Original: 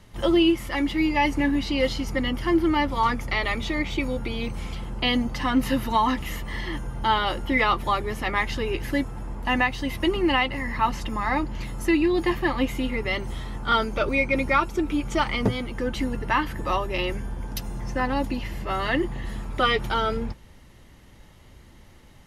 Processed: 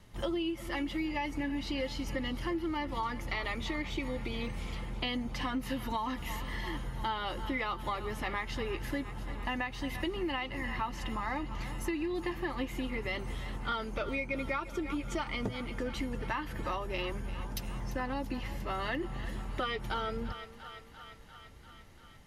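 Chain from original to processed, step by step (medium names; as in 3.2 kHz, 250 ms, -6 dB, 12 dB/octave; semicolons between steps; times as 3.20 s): vibrato 1.2 Hz 6.8 cents; on a send: thinning echo 344 ms, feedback 74%, high-pass 420 Hz, level -16 dB; on the sum: compression, threshold -25 dBFS, peak gain reduction 9.5 dB; trim -6 dB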